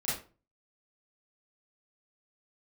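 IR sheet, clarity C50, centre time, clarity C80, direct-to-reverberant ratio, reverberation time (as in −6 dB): 2.5 dB, 47 ms, 9.5 dB, −11.0 dB, 0.35 s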